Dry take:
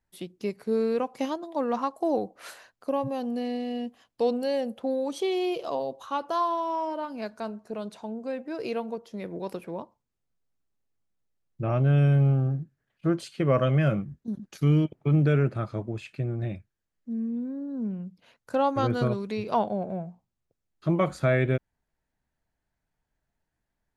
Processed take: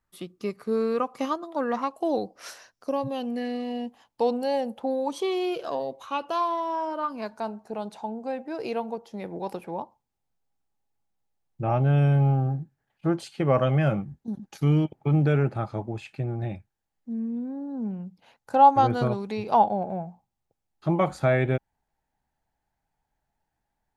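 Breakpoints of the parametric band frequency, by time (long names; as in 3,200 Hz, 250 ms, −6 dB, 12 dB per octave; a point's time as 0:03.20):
parametric band +14 dB 0.27 octaves
0:01.48 1,200 Hz
0:02.39 5,600 Hz
0:02.91 5,600 Hz
0:03.74 870 Hz
0:05.01 870 Hz
0:06.27 2,800 Hz
0:07.42 820 Hz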